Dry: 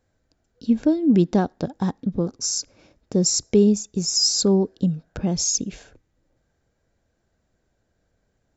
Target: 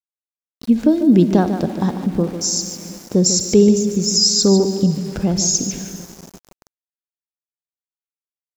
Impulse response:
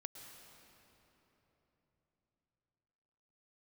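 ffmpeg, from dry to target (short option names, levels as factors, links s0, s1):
-filter_complex "[0:a]asplit=2[s0][s1];[s1]adelay=66,lowpass=f=2900:p=1,volume=0.141,asplit=2[s2][s3];[s3]adelay=66,lowpass=f=2900:p=1,volume=0.5,asplit=2[s4][s5];[s5]adelay=66,lowpass=f=2900:p=1,volume=0.5,asplit=2[s6][s7];[s7]adelay=66,lowpass=f=2900:p=1,volume=0.5[s8];[s0][s2][s4][s6][s8]amix=inputs=5:normalize=0,asplit=2[s9][s10];[1:a]atrim=start_sample=2205,adelay=147[s11];[s10][s11]afir=irnorm=-1:irlink=0,volume=0.631[s12];[s9][s12]amix=inputs=2:normalize=0,aeval=exprs='val(0)*gte(abs(val(0)),0.0106)':c=same,volume=1.68"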